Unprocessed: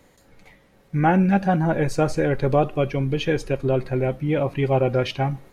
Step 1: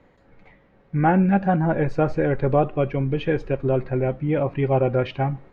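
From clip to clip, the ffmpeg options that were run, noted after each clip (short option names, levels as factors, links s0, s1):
-af "lowpass=2200"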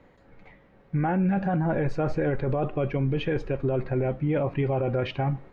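-af "alimiter=limit=0.119:level=0:latency=1:release=10"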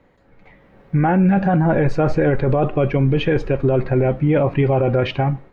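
-af "dynaudnorm=f=400:g=3:m=2.82"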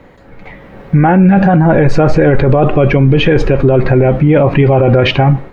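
-af "alimiter=level_in=6.68:limit=0.891:release=50:level=0:latency=1,volume=0.891"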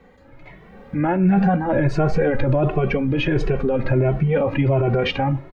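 -filter_complex "[0:a]asplit=2[s0][s1];[s1]adelay=2.2,afreqshift=1.4[s2];[s0][s2]amix=inputs=2:normalize=1,volume=0.447"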